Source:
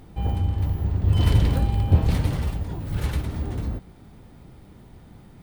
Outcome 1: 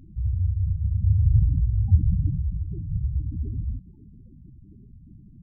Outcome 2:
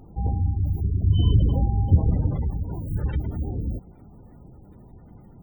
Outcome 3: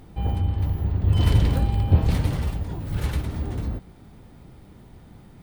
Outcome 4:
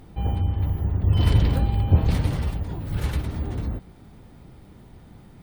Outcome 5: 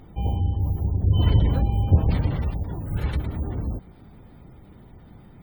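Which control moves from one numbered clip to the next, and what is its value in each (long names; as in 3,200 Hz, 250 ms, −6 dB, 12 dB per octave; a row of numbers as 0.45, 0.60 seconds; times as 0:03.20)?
gate on every frequency bin, under each frame's peak: −10, −25, −60, −50, −35 decibels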